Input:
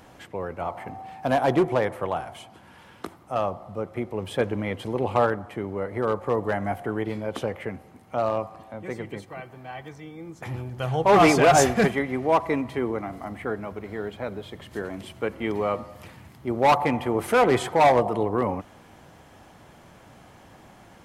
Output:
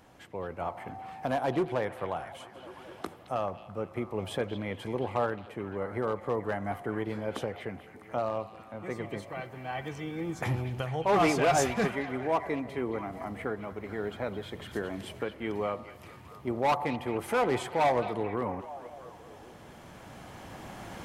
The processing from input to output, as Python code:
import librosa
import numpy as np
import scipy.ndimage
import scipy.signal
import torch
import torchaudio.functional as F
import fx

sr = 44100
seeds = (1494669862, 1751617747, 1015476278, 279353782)

y = fx.recorder_agc(x, sr, target_db=-13.5, rise_db_per_s=6.2, max_gain_db=30)
y = fx.echo_stepped(y, sr, ms=218, hz=3200.0, octaves=-0.7, feedback_pct=70, wet_db=-8.0)
y = F.gain(torch.from_numpy(y), -8.0).numpy()